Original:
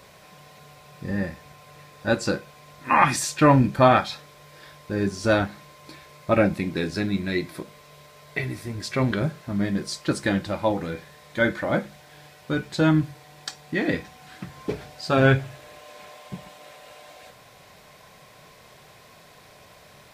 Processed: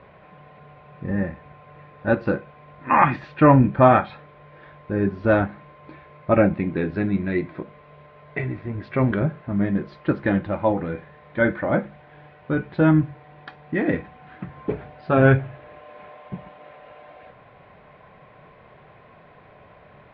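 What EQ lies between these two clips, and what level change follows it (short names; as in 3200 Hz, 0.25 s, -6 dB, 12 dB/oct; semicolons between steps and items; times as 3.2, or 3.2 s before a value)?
Bessel low-pass 1800 Hz, order 6; air absorption 56 m; +3.0 dB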